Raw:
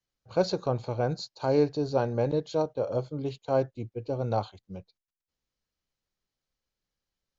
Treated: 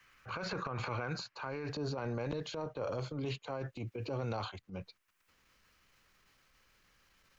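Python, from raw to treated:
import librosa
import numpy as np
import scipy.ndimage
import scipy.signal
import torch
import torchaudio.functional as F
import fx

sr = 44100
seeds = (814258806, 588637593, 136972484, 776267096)

y = fx.band_shelf(x, sr, hz=1700.0, db=fx.steps((0.0, 16.0), (1.66, 8.5)), octaves=1.7)
y = fx.over_compress(y, sr, threshold_db=-27.0, ratio=-0.5)
y = fx.transient(y, sr, attack_db=-9, sustain_db=7)
y = fx.band_squash(y, sr, depth_pct=70)
y = F.gain(torch.from_numpy(y), -8.0).numpy()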